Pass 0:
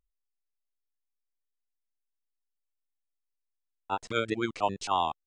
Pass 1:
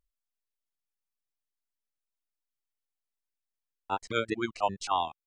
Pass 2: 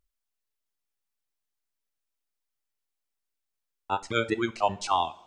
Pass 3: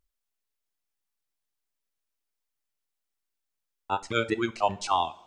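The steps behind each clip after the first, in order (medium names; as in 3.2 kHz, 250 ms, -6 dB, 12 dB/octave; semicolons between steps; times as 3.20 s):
reverb removal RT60 1.4 s
reverberation, pre-delay 3 ms, DRR 11 dB; trim +3 dB
rattle on loud lows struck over -33 dBFS, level -36 dBFS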